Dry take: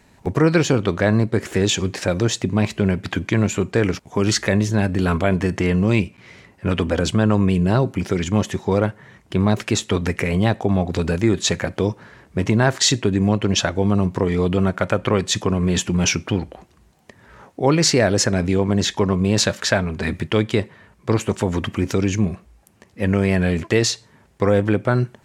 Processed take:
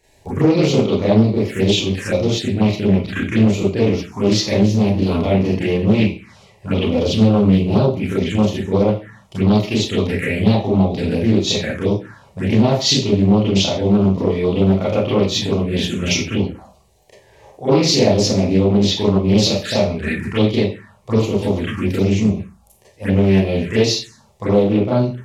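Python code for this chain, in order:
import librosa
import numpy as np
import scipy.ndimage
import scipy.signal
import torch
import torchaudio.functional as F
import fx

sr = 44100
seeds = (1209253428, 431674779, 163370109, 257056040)

y = fx.rev_schroeder(x, sr, rt60_s=0.39, comb_ms=28, drr_db=-9.0)
y = fx.env_phaser(y, sr, low_hz=210.0, high_hz=1600.0, full_db=-8.0)
y = fx.doppler_dist(y, sr, depth_ms=0.39)
y = y * 10.0 ** (-5.0 / 20.0)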